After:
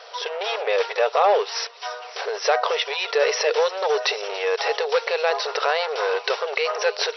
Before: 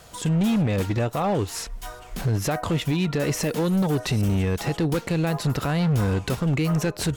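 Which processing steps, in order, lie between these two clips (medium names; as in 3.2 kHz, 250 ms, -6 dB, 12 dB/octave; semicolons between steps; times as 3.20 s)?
brick-wall FIR band-pass 400–5900 Hz; feedback echo behind a high-pass 283 ms, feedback 78%, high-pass 3.1 kHz, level -15 dB; trim +8 dB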